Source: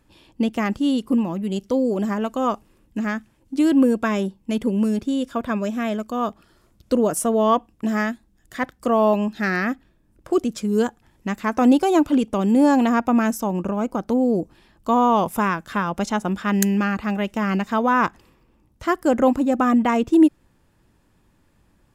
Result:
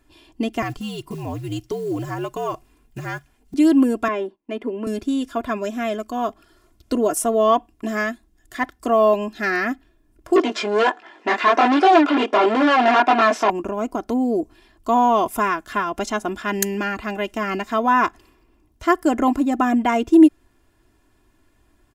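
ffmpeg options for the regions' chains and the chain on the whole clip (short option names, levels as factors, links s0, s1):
-filter_complex "[0:a]asettb=1/sr,asplit=3[s0][s1][s2];[s0]atrim=end=0.624[s3];[s1]atrim=start=0.62:end=3.54,asetpts=PTS-STARTPTS,afade=t=in:d=0.004:c=qsin,afade=t=out:st=2.916:d=0.004:c=qsin,acompressor=threshold=0.0891:ratio=3:attack=3.2:release=140:knee=1:detection=peak,afreqshift=-75,acrusher=bits=8:mode=log:mix=0:aa=0.000001[s4];[s2]atrim=start=3.536[s5];[s3][s4]acrossfade=d=0.004:c1=hsin:c2=qsin[s6];[s6][s5]acrossfade=d=0.004:c1=qsin:c2=hsin,asettb=1/sr,asplit=3[s7][s8][s9];[s7]atrim=end=4.084[s10];[s8]atrim=start=4.08:end=4.87,asetpts=PTS-STARTPTS,afade=t=in:d=0.004:c=qsin,afade=t=out:st=0.786:d=0.004:c=qsin,acrossover=split=230 2800:gain=0.0794 1 0.1[s11][s12][s13];[s11][s12][s13]amix=inputs=3:normalize=0,agate=range=0.251:threshold=0.00282:ratio=16:release=100:detection=peak[s14];[s9]atrim=start=4.866[s15];[s10][s14]acrossfade=d=0.004:c1=hsin:c2=qsin[s16];[s16][s15]acrossfade=d=0.004:c1=qsin:c2=hsin,asettb=1/sr,asplit=3[s17][s18][s19];[s17]atrim=end=10.364[s20];[s18]atrim=start=10.36:end=13.5,asetpts=PTS-STARTPTS,afade=t=in:d=0.004:c=qsin,afade=t=out:st=3.136:d=0.004:c=qsin,flanger=delay=18:depth=7.1:speed=1.4,asplit=2[s21][s22];[s22]highpass=f=720:p=1,volume=31.6,asoftclip=type=tanh:threshold=0.473[s23];[s21][s23]amix=inputs=2:normalize=0,lowpass=f=2200:p=1,volume=0.501,highpass=350,lowpass=4200[s24];[s19]atrim=start=13.496[s25];[s20][s24]acrossfade=d=0.004:c1=hsin:c2=qsin[s26];[s26][s25]acrossfade=d=0.004:c1=qsin:c2=hsin,equalizer=f=86:w=0.38:g=-3,bandreject=f=1200:w=28,aecho=1:1:2.9:0.69"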